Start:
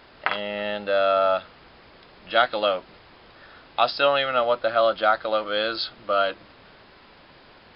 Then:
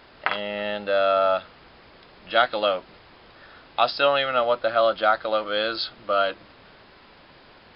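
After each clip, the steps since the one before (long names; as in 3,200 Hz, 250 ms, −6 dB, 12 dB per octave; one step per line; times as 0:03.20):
no processing that can be heard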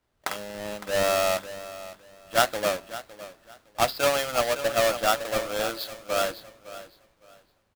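each half-wave held at its own peak
repeating echo 560 ms, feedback 42%, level −9.5 dB
multiband upward and downward expander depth 70%
level −8.5 dB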